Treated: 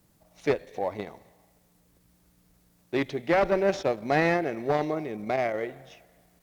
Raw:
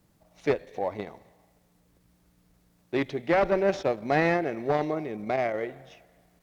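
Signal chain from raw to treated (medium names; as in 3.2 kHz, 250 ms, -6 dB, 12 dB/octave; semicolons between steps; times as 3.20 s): treble shelf 6 kHz +6.5 dB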